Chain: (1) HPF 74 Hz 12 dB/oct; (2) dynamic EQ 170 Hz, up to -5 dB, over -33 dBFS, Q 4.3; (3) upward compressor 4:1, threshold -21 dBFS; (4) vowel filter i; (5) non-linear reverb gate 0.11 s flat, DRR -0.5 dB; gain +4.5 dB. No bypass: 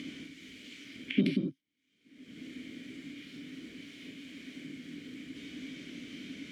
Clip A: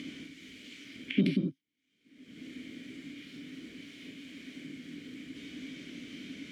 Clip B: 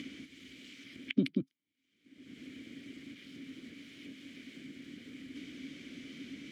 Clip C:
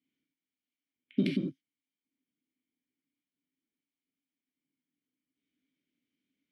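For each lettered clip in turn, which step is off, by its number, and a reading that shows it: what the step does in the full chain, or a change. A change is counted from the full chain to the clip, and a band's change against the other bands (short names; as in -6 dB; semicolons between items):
2, 125 Hz band +3.0 dB; 5, crest factor change +1.5 dB; 3, momentary loudness spread change -9 LU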